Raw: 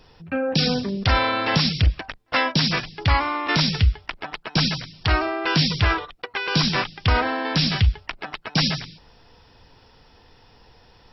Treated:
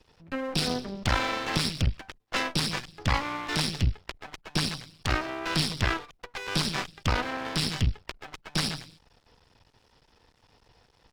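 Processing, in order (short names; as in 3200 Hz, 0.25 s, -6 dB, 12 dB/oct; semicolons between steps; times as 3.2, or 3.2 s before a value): half-wave rectifier; added harmonics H 7 -29 dB, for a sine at -7 dBFS; gain -2.5 dB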